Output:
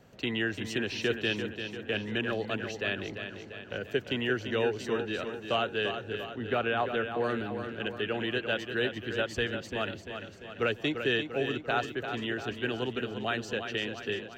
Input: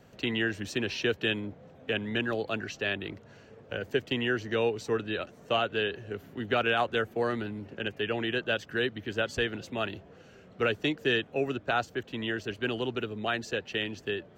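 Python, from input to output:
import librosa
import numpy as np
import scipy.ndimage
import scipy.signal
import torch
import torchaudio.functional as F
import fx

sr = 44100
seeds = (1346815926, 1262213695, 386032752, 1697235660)

y = fx.lowpass(x, sr, hz=2100.0, slope=6, at=(6.24, 7.24))
y = fx.echo_feedback(y, sr, ms=344, feedback_pct=55, wet_db=-8.0)
y = F.gain(torch.from_numpy(y), -1.5).numpy()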